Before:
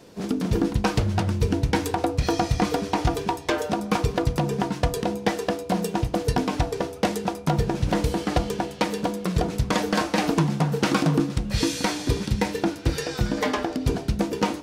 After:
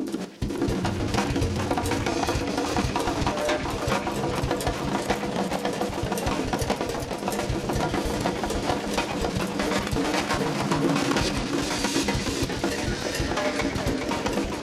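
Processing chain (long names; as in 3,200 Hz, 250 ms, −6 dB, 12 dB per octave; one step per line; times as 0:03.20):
slices reordered back to front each 83 ms, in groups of 5
low-shelf EQ 250 Hz −6.5 dB
in parallel at −3 dB: brickwall limiter −19.5 dBFS, peak gain reduction 8.5 dB
on the sum: formants moved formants +5 semitones
echo through a band-pass that steps 109 ms, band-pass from 2,800 Hz, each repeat 0.7 octaves, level −7.5 dB
formants moved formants −4 semitones
on a send at −7 dB: convolution reverb RT60 0.45 s, pre-delay 3 ms
on the sum: feedback echo with a swinging delay time 413 ms, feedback 56%, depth 187 cents, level −7 dB
level −4 dB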